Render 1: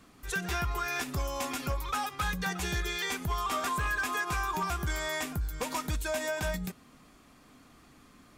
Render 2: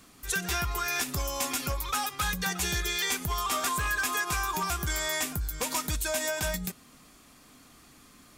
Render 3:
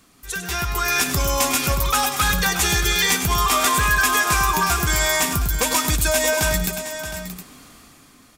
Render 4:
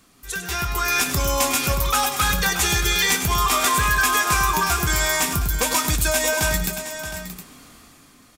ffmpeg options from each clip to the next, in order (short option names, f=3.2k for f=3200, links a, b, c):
-af "highshelf=f=3.6k:g=10.5"
-af "dynaudnorm=f=120:g=11:m=10dB,aecho=1:1:101|627|715:0.335|0.251|0.224"
-filter_complex "[0:a]asplit=2[a][b];[b]adelay=25,volume=-12.5dB[c];[a][c]amix=inputs=2:normalize=0,volume=-1dB"